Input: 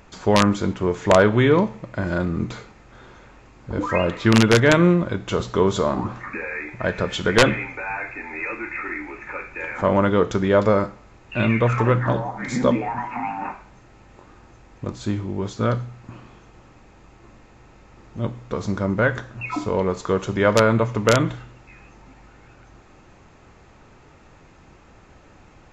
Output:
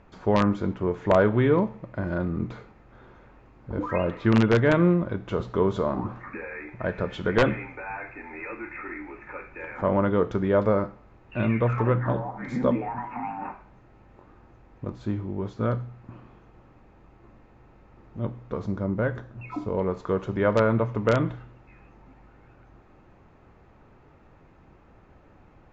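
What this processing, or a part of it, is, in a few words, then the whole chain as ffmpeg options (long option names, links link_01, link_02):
through cloth: -filter_complex "[0:a]lowpass=6500,highshelf=frequency=3000:gain=-16,asettb=1/sr,asplit=3[link_01][link_02][link_03];[link_01]atrim=end=18.664[link_04];[link_02]atrim=start=18.66:end=19.78,asetpts=PTS-STARTPTS,afade=type=in:duration=0.004:curve=qsin,afade=type=out:start_time=1.116:duration=0.004:curve=qsin,equalizer=frequency=1600:width=0.52:gain=-4.5[link_05];[link_03]atrim=start=19.776[link_06];[link_04][link_05]acrossfade=duration=0.004:curve1=hsin:curve2=qsin[link_07];[link_07][link_06]acrossfade=duration=0.004:curve1=qsin:curve2=hsin,volume=-4dB"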